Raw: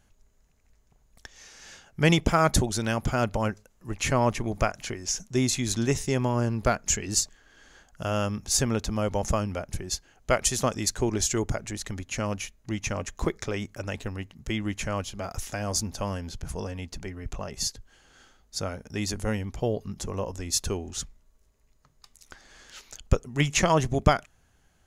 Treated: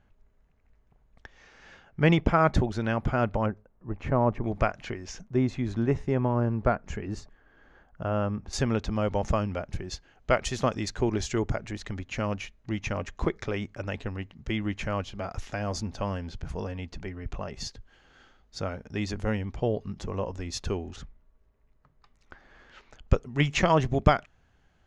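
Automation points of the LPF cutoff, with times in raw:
2300 Hz
from 3.46 s 1100 Hz
from 4.44 s 2800 Hz
from 5.21 s 1500 Hz
from 8.53 s 3500 Hz
from 20.96 s 2000 Hz
from 23.08 s 3700 Hz

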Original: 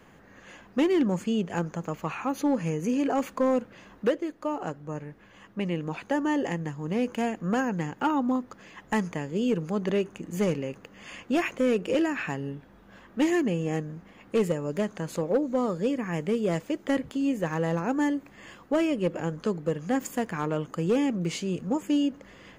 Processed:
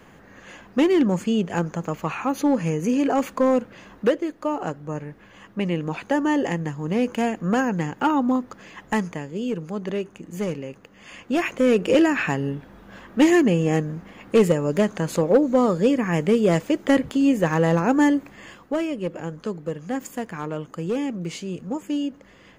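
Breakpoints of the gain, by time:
8.82 s +5 dB
9.34 s -1 dB
10.98 s -1 dB
11.88 s +8 dB
18.17 s +8 dB
18.86 s -1 dB

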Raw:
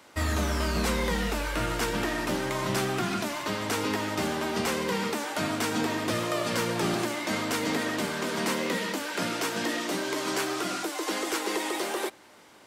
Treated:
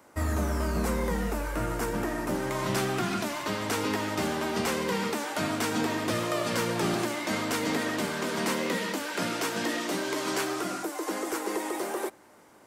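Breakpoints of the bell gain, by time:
bell 3500 Hz 1.6 oct
2.25 s -12.5 dB
2.67 s -1.5 dB
10.41 s -1.5 dB
10.84 s -10.5 dB

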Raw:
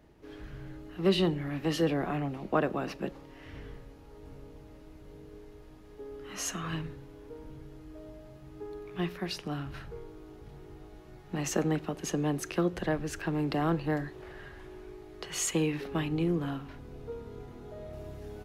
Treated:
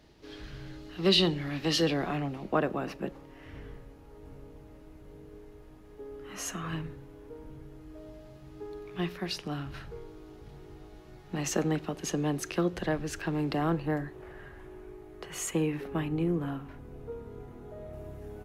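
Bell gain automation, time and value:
bell 4400 Hz 1.4 oct
1.93 s +12 dB
2.33 s +3 dB
2.98 s -4 dB
7.73 s -4 dB
8.17 s +2.5 dB
13.4 s +2.5 dB
14.08 s -8.5 dB

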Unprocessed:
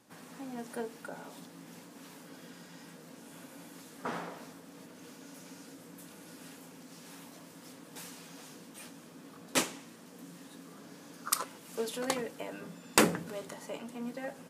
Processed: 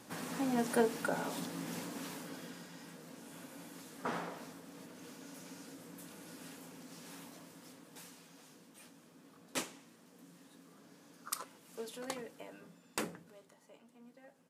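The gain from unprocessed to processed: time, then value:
1.89 s +8.5 dB
2.74 s -1 dB
7.18 s -1 dB
8.3 s -9 dB
12.43 s -9 dB
13.51 s -19 dB

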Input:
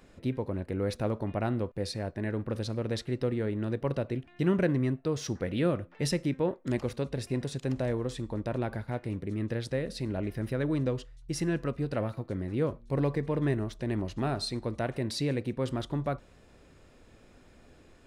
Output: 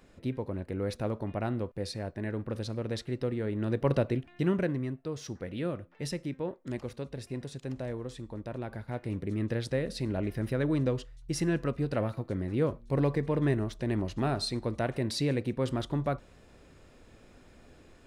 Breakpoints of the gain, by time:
3.42 s -2 dB
3.96 s +5 dB
4.87 s -6 dB
8.64 s -6 dB
9.19 s +1 dB

